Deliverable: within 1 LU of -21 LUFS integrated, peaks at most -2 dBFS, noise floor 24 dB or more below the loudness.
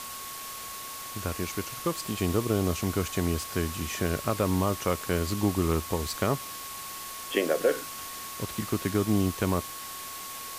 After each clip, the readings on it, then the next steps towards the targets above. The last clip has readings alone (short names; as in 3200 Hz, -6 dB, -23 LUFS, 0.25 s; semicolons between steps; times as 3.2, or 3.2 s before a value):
steady tone 1100 Hz; tone level -42 dBFS; noise floor -40 dBFS; noise floor target -54 dBFS; loudness -30.0 LUFS; peak -12.0 dBFS; loudness target -21.0 LUFS
-> notch 1100 Hz, Q 30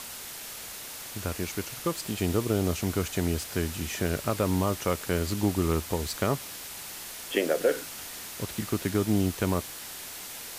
steady tone none; noise floor -41 dBFS; noise floor target -54 dBFS
-> noise print and reduce 13 dB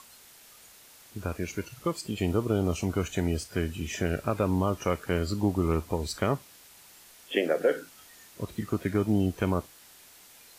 noise floor -54 dBFS; loudness -29.5 LUFS; peak -12.5 dBFS; loudness target -21.0 LUFS
-> gain +8.5 dB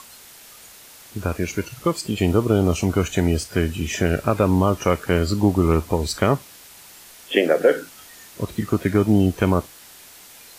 loudness -21.0 LUFS; peak -4.0 dBFS; noise floor -45 dBFS